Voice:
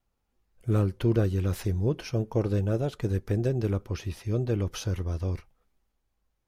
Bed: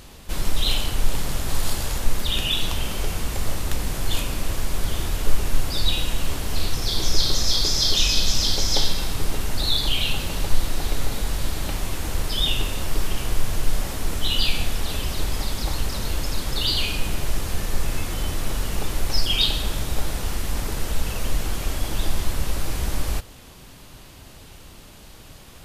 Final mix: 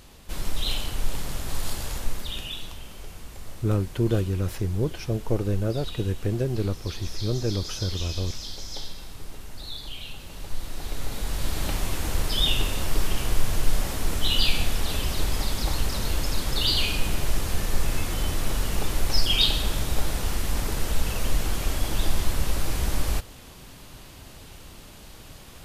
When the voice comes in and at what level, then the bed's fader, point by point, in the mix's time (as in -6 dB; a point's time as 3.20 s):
2.95 s, +0.5 dB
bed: 1.98 s -5.5 dB
2.82 s -15 dB
10.19 s -15 dB
11.62 s -0.5 dB